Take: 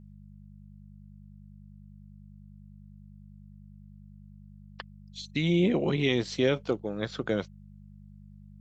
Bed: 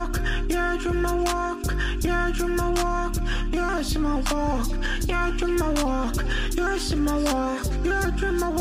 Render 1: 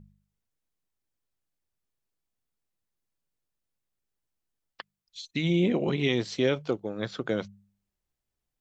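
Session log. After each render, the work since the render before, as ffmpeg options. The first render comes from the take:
-af "bandreject=f=50:t=h:w=4,bandreject=f=100:t=h:w=4,bandreject=f=150:t=h:w=4,bandreject=f=200:t=h:w=4"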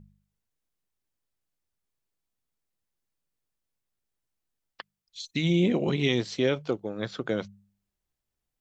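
-filter_complex "[0:a]asettb=1/sr,asplit=3[a][b][c];[a]atrim=end=5.204[d];[b]atrim=start=5.2:end=6.21,asetpts=PTS-STARTPTS,afade=t=in:d=0.004:c=qsin,afade=t=out:st=1.006:d=0.004:c=qsin,bass=f=250:g=2,treble=f=4k:g=6[e];[c]atrim=start=6.206[f];[d][e]acrossfade=d=0.004:c1=hsin:c2=qsin[g];[g][f]acrossfade=d=0.004:c1=qsin:c2=hsin"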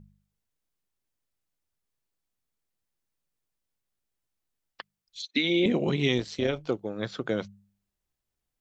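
-filter_complex "[0:a]asettb=1/sr,asplit=3[a][b][c];[a]atrim=end=5.224[d];[b]atrim=start=5.22:end=5.66,asetpts=PTS-STARTPTS,afade=t=in:d=0.004:c=qsin,afade=t=out:st=0.436:d=0.004:c=qsin,highpass=f=250:w=0.5412,highpass=f=250:w=1.3066,equalizer=f=250:t=q:w=4:g=10,equalizer=f=500:t=q:w=4:g=4,equalizer=f=1.6k:t=q:w=4:g=6,equalizer=f=2.2k:t=q:w=4:g=5,equalizer=f=3.7k:t=q:w=4:g=7,lowpass=f=5.2k:w=0.5412,lowpass=f=5.2k:w=1.3066[e];[c]atrim=start=5.656[f];[d][e]acrossfade=d=0.004:c1=hsin:c2=qsin[g];[g][f]acrossfade=d=0.004:c1=qsin:c2=hsin,asettb=1/sr,asplit=3[h][i][j];[h]atrim=end=6.184[k];[i]atrim=start=6.18:end=6.68,asetpts=PTS-STARTPTS,afade=t=in:d=0.004:c=qsin,afade=t=out:st=0.496:d=0.004:c=qsin,tremolo=f=160:d=0.571[l];[j]atrim=start=6.676[m];[k][l]acrossfade=d=0.004:c1=hsin:c2=qsin[n];[n][m]acrossfade=d=0.004:c1=qsin:c2=hsin"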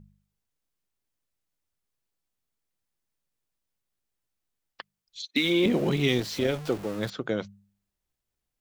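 -filter_complex "[0:a]asettb=1/sr,asplit=3[a][b][c];[a]atrim=end=5.364[d];[b]atrim=start=5.36:end=7.1,asetpts=PTS-STARTPTS,afade=t=in:d=0.004:c=qsin,afade=t=out:st=1.736:d=0.004:c=qsin,aeval=exprs='val(0)+0.5*0.0178*sgn(val(0))':c=same[e];[c]atrim=start=7.096[f];[d][e]acrossfade=d=0.004:c1=hsin:c2=qsin[g];[g][f]acrossfade=d=0.004:c1=qsin:c2=hsin"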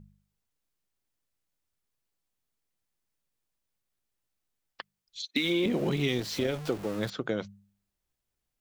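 -af "acompressor=threshold=-26dB:ratio=2.5"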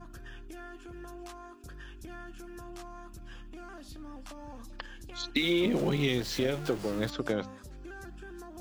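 -filter_complex "[1:a]volume=-21.5dB[a];[0:a][a]amix=inputs=2:normalize=0"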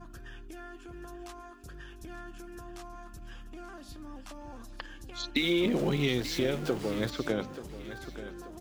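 -af "aecho=1:1:883|1766|2649|3532:0.211|0.0803|0.0305|0.0116"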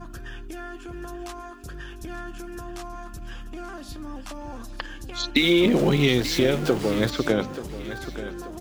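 -af "volume=8.5dB"

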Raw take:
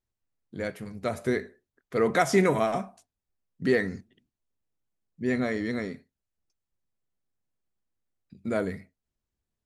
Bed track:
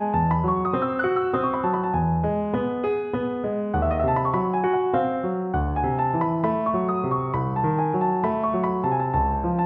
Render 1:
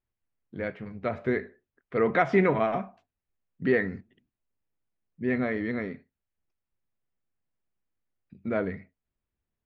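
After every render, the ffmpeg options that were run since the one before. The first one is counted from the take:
-af "lowpass=f=2.7k:w=0.5412,lowpass=f=2.7k:w=1.3066,aemphasis=mode=production:type=50fm"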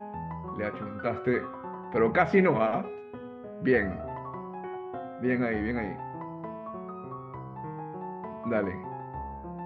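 -filter_complex "[1:a]volume=-16dB[a];[0:a][a]amix=inputs=2:normalize=0"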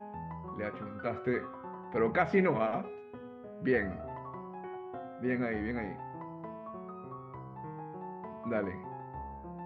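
-af "volume=-5dB"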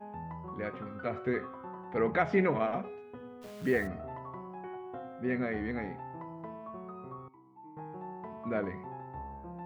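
-filter_complex "[0:a]asplit=3[a][b][c];[a]afade=t=out:st=3.41:d=0.02[d];[b]acrusher=bits=9:dc=4:mix=0:aa=0.000001,afade=t=in:st=3.41:d=0.02,afade=t=out:st=3.86:d=0.02[e];[c]afade=t=in:st=3.86:d=0.02[f];[d][e][f]amix=inputs=3:normalize=0,asettb=1/sr,asplit=3[g][h][i];[g]atrim=end=7.284[j];[h]atrim=start=7.28:end=7.77,asetpts=PTS-STARTPTS,afade=t=in:d=0.004:c=qsin,afade=t=out:st=0.486:d=0.004:c=qsin,asplit=3[k][l][m];[k]bandpass=f=300:t=q:w=8,volume=0dB[n];[l]bandpass=f=870:t=q:w=8,volume=-6dB[o];[m]bandpass=f=2.24k:t=q:w=8,volume=-9dB[p];[n][o][p]amix=inputs=3:normalize=0[q];[i]atrim=start=7.766[r];[j][q]acrossfade=d=0.004:c1=hsin:c2=qsin[s];[s][r]acrossfade=d=0.004:c1=qsin:c2=hsin"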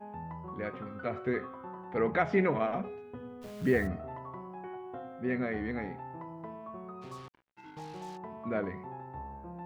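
-filter_complex "[0:a]asettb=1/sr,asplit=3[a][b][c];[a]atrim=end=2.794[d];[b]atrim=start=2.79:end=3.96,asetpts=PTS-STARTPTS,afade=t=in:d=0.004:c=qsin,afade=t=out:st=1.166:d=0.004:c=qsin,lowshelf=f=190:g=8.5[e];[c]atrim=start=3.956[f];[d][e]acrossfade=d=0.004:c1=hsin:c2=qsin[g];[g][f]acrossfade=d=0.004:c1=qsin:c2=hsin,asplit=3[h][i][j];[h]afade=t=out:st=7.01:d=0.02[k];[i]acrusher=bits=7:mix=0:aa=0.5,afade=t=in:st=7.01:d=0.02,afade=t=out:st=8.16:d=0.02[l];[j]afade=t=in:st=8.16:d=0.02[m];[k][l][m]amix=inputs=3:normalize=0"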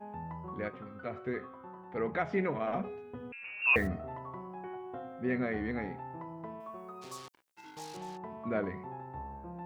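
-filter_complex "[0:a]asettb=1/sr,asplit=3[a][b][c];[a]atrim=end=3.324[d];[b]atrim=start=3.32:end=3.76,asetpts=PTS-STARTPTS,afade=t=in:d=0.004:c=qsin,afade=t=out:st=0.436:d=0.004:c=qsin,lowpass=f=2.5k:t=q:w=0.5098,lowpass=f=2.5k:t=q:w=0.6013,lowpass=f=2.5k:t=q:w=0.9,lowpass=f=2.5k:t=q:w=2.563,afreqshift=-2900[e];[c]atrim=start=3.756[f];[d][e]acrossfade=d=0.004:c1=hsin:c2=qsin[g];[g][f]acrossfade=d=0.004:c1=qsin:c2=hsin,asettb=1/sr,asplit=3[h][i][j];[h]atrim=end=6.604[k];[i]atrim=start=6.6:end=7.97,asetpts=PTS-STARTPTS,afade=t=in:d=0.004:c=qsin,afade=t=out:st=1.366:d=0.004:c=qsin,bass=f=250:g=-9,treble=f=4k:g=13[l];[j]atrim=start=7.966[m];[k][l]acrossfade=d=0.004:c1=hsin:c2=qsin[n];[n][m]acrossfade=d=0.004:c1=qsin:c2=hsin,asplit=3[o][p][q];[o]atrim=end=0.682[r];[p]atrim=start=0.678:end=2.672,asetpts=PTS-STARTPTS,volume=-4.5dB[s];[q]atrim=start=2.668[t];[r][s]acrossfade=d=0.004:c1=hsin:c2=hsin[u];[u][t]acrossfade=d=0.004:c1=hsin:c2=hsin"

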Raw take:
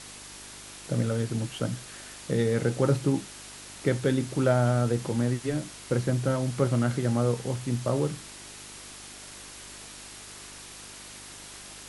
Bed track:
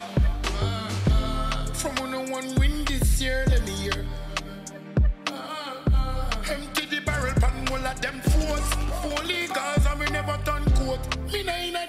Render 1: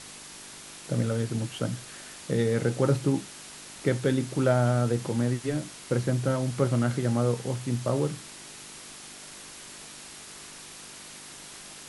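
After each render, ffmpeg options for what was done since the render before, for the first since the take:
-af "bandreject=f=50:t=h:w=4,bandreject=f=100:t=h:w=4"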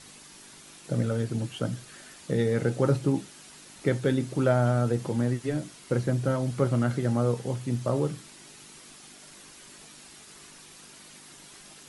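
-af "afftdn=nr=7:nf=-45"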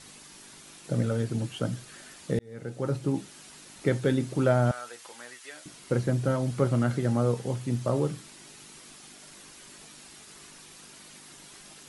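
-filter_complex "[0:a]asettb=1/sr,asplit=3[a][b][c];[a]atrim=end=4.714[d];[b]atrim=start=4.71:end=5.66,asetpts=PTS-STARTPTS,afade=t=in:d=0.004:c=qsin,afade=t=out:st=0.946:d=0.004:c=qsin,highpass=1.3k[e];[c]atrim=start=5.656[f];[d][e]acrossfade=d=0.004:c1=hsin:c2=qsin[g];[g][f]acrossfade=d=0.004:c1=qsin:c2=hsin,asplit=2[h][i];[h]atrim=end=2.39,asetpts=PTS-STARTPTS,afade=t=out:st=2.386:d=0.004:c=hsin[j];[i]atrim=start=2.39,asetpts=PTS-STARTPTS,afade=t=in:d=0.97[k];[j][k]concat=n=2:v=0:a=1"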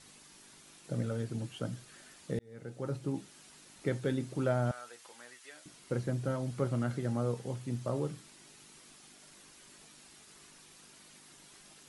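-af "volume=-7.5dB"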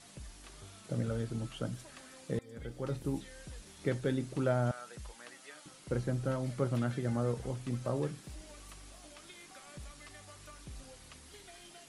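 -filter_complex "[1:a]volume=-27.5dB[a];[0:a][a]amix=inputs=2:normalize=0"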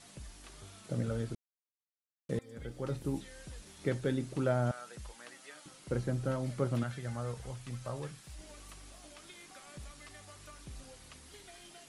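-filter_complex "[0:a]asettb=1/sr,asplit=3[a][b][c];[a]atrim=end=6.834[d];[b]atrim=start=6.83:end=8.39,asetpts=PTS-STARTPTS,afade=t=in:d=0.004:c=qsin,afade=t=out:st=1.556:d=0.004:c=qsin,equalizer=f=300:t=o:w=1.9:g=-11.5[e];[c]atrim=start=8.386[f];[d][e]acrossfade=d=0.004:c1=hsin:c2=qsin[g];[g][f]acrossfade=d=0.004:c1=qsin:c2=hsin,asplit=3[h][i][j];[h]atrim=end=1.35,asetpts=PTS-STARTPTS,afade=t=out:st=1.346:d=0.004:c=hsin[k];[i]atrim=start=1.35:end=2.29,asetpts=PTS-STARTPTS,volume=0[l];[j]atrim=start=2.29,asetpts=PTS-STARTPTS,afade=t=in:d=0.004:c=hsin[m];[k][l][m]concat=n=3:v=0:a=1"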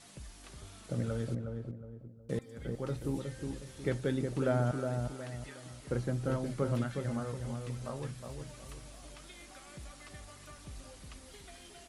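-filter_complex "[0:a]asplit=2[a][b];[b]adelay=364,lowpass=f=900:p=1,volume=-4dB,asplit=2[c][d];[d]adelay=364,lowpass=f=900:p=1,volume=0.41,asplit=2[e][f];[f]adelay=364,lowpass=f=900:p=1,volume=0.41,asplit=2[g][h];[h]adelay=364,lowpass=f=900:p=1,volume=0.41,asplit=2[i][j];[j]adelay=364,lowpass=f=900:p=1,volume=0.41[k];[a][c][e][g][i][k]amix=inputs=6:normalize=0"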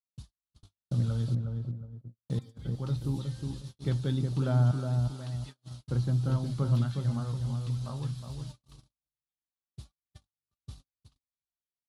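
-af "equalizer=f=125:t=o:w=1:g=9,equalizer=f=500:t=o:w=1:g=-8,equalizer=f=1k:t=o:w=1:g=4,equalizer=f=2k:t=o:w=1:g=-11,equalizer=f=4k:t=o:w=1:g=10,equalizer=f=8k:t=o:w=1:g=-4,agate=range=-56dB:threshold=-41dB:ratio=16:detection=peak"

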